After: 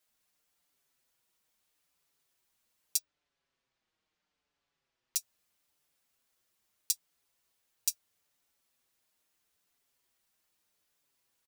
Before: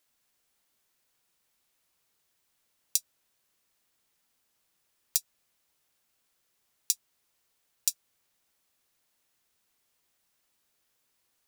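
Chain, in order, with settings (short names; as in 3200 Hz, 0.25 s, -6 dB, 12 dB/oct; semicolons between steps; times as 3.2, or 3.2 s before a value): 2.98–5.16 air absorption 140 m; endless flanger 5.8 ms -0.78 Hz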